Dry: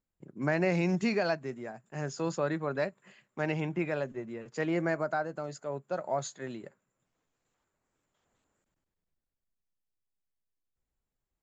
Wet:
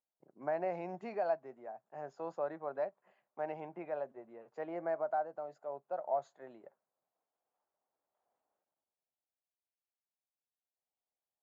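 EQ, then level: band-pass filter 730 Hz, Q 2.8; 0.0 dB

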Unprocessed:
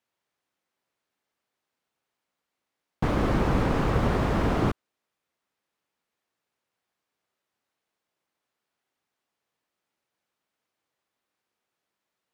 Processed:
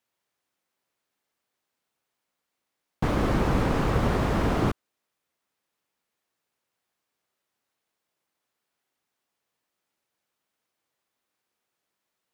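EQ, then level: treble shelf 5.8 kHz +5 dB; 0.0 dB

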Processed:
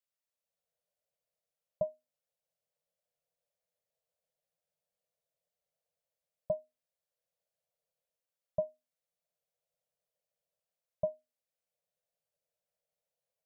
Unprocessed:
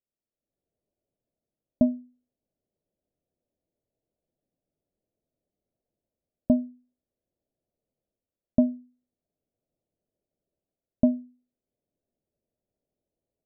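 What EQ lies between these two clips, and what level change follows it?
elliptic band-stop 180–470 Hz; bass shelf 98 Hz -10 dB; bass shelf 420 Hz -11.5 dB; +1.5 dB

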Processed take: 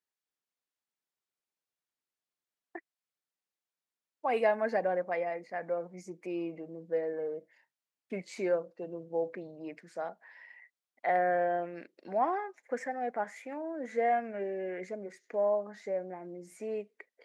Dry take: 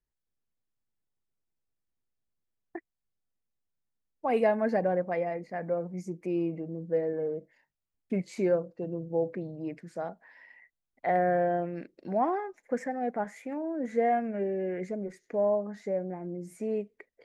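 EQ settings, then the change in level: frequency weighting A; 0.0 dB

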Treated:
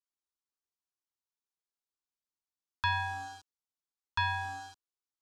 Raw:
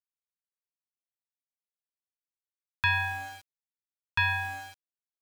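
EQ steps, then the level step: Chebyshev low-pass 6.1 kHz, order 2; static phaser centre 580 Hz, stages 6; +2.0 dB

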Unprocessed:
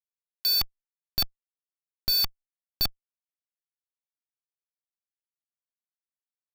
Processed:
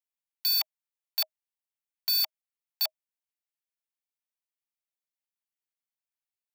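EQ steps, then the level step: rippled Chebyshev high-pass 610 Hz, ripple 6 dB; treble shelf 8.6 kHz +8 dB; 0.0 dB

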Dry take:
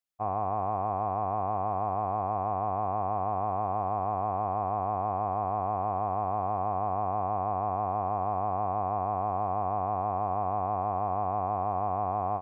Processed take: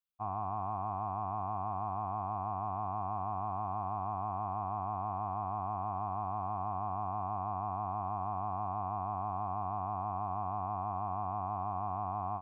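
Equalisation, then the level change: static phaser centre 1.9 kHz, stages 6; -3.5 dB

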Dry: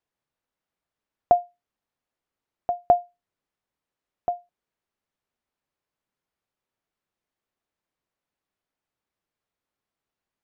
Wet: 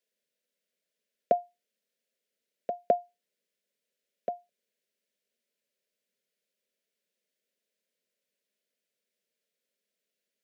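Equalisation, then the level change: high-pass 230 Hz 24 dB/octave; Butterworth band-stop 810 Hz, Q 1.9; static phaser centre 310 Hz, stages 6; +5.0 dB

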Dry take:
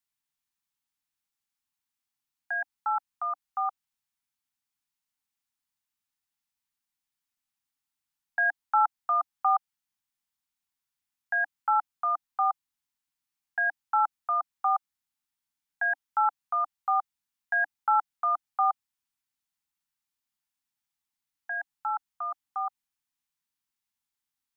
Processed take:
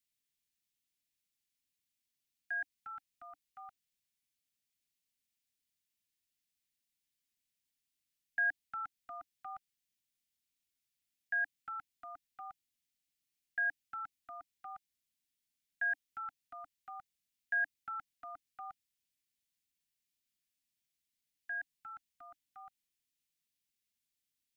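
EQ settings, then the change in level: dynamic bell 840 Hz, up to -4 dB, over -36 dBFS, Q 7.9; Butterworth band-stop 1 kHz, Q 0.52; peaking EQ 1.4 kHz +5.5 dB 1.5 oct; 0.0 dB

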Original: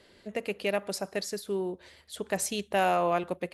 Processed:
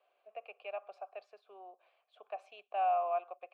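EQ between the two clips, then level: vowel filter a; high-pass 320 Hz 12 dB/octave; three-band isolator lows -17 dB, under 470 Hz, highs -19 dB, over 3.4 kHz; 0.0 dB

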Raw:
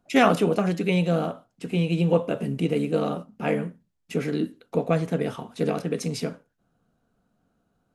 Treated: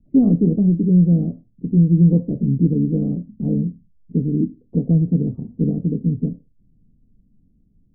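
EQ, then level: four-pole ladder low-pass 370 Hz, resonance 25%; tilt EQ -3 dB/octave; bass shelf 93 Hz +8 dB; +5.5 dB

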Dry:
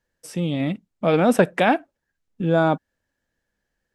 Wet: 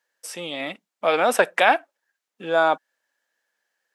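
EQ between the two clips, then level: high-pass 710 Hz 12 dB/octave; +4.5 dB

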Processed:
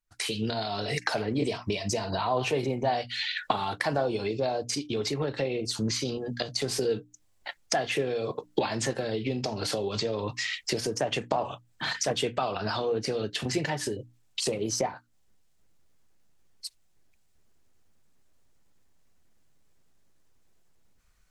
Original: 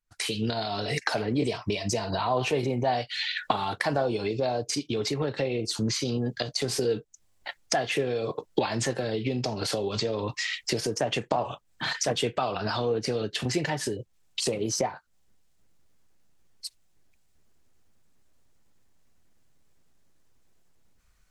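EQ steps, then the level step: hum notches 60/120/180/240/300 Hz; -1.0 dB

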